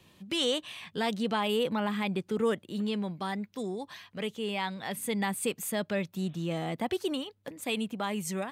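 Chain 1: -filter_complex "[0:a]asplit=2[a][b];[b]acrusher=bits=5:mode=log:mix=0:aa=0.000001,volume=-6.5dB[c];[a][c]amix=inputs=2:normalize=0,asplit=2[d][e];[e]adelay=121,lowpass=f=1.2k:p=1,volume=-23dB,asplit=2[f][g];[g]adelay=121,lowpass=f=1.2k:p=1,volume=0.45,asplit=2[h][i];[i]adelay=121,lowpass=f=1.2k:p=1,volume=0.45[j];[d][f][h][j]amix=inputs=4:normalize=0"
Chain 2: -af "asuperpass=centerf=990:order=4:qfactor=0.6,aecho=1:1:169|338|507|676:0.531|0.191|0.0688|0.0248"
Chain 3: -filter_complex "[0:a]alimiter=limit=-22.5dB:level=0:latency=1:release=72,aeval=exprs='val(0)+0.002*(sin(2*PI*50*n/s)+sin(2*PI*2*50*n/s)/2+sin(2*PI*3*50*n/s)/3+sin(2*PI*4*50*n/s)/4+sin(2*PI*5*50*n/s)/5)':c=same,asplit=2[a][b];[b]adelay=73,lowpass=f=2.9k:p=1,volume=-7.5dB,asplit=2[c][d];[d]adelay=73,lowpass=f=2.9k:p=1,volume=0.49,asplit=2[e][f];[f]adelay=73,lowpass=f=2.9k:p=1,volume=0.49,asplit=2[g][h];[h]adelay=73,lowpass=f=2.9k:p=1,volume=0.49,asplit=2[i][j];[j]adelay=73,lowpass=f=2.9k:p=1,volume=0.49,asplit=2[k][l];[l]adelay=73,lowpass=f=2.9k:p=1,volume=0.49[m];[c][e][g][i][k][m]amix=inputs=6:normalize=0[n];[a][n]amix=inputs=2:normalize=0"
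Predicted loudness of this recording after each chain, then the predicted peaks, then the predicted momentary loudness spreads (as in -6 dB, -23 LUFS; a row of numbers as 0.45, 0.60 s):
-29.0, -36.0, -33.0 LUFS; -13.5, -18.5, -19.0 dBFS; 8, 9, 6 LU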